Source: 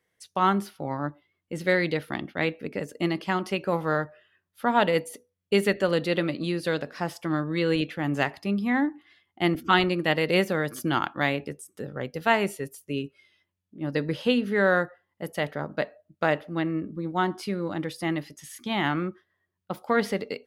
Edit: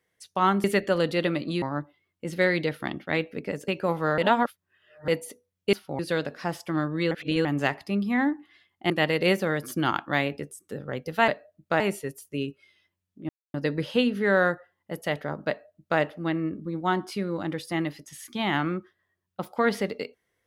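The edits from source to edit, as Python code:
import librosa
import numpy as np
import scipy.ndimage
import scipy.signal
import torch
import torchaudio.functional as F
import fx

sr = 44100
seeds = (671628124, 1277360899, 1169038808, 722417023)

y = fx.edit(x, sr, fx.swap(start_s=0.64, length_s=0.26, other_s=5.57, other_length_s=0.98),
    fx.cut(start_s=2.96, length_s=0.56),
    fx.reverse_span(start_s=4.02, length_s=0.9),
    fx.reverse_span(start_s=7.67, length_s=0.34),
    fx.cut(start_s=9.46, length_s=0.52),
    fx.insert_silence(at_s=13.85, length_s=0.25),
    fx.duplicate(start_s=15.79, length_s=0.52, to_s=12.36), tone=tone)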